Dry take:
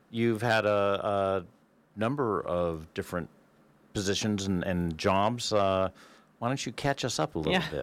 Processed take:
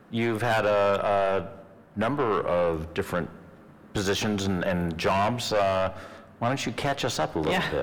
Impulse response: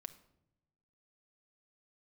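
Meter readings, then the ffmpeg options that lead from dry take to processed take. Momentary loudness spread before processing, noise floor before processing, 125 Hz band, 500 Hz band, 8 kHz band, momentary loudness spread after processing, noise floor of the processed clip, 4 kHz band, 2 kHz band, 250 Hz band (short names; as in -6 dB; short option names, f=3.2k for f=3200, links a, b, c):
9 LU, -64 dBFS, +2.0 dB, +3.5 dB, +1.0 dB, 8 LU, -51 dBFS, +2.0 dB, +4.0 dB, +1.5 dB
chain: -filter_complex "[0:a]acrossover=split=430|3000[a][b][c];[a]acompressor=threshold=-34dB:ratio=6[d];[d][b][c]amix=inputs=3:normalize=0,asoftclip=type=tanh:threshold=-29.5dB,asplit=2[e][f];[1:a]atrim=start_sample=2205,asetrate=24696,aresample=44100,lowpass=3.5k[g];[f][g]afir=irnorm=-1:irlink=0,volume=1.5dB[h];[e][h]amix=inputs=2:normalize=0,volume=4.5dB"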